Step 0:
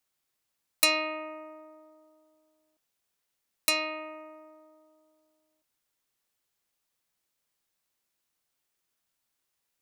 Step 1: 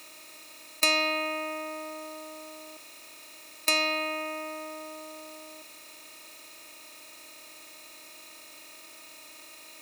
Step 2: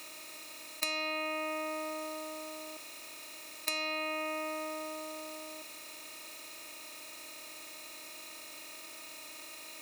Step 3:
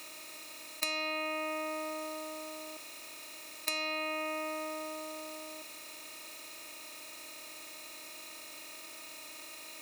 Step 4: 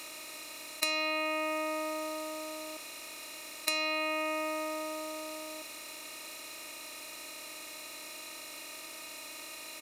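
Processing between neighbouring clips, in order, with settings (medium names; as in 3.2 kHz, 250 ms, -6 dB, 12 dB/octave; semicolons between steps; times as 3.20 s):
spectral levelling over time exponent 0.4; treble shelf 7.5 kHz -6 dB
compression 6:1, threshold -33 dBFS, peak gain reduction 13.5 dB; trim +1 dB
no audible change
resampled via 32 kHz; in parallel at -7.5 dB: short-mantissa float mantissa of 2-bit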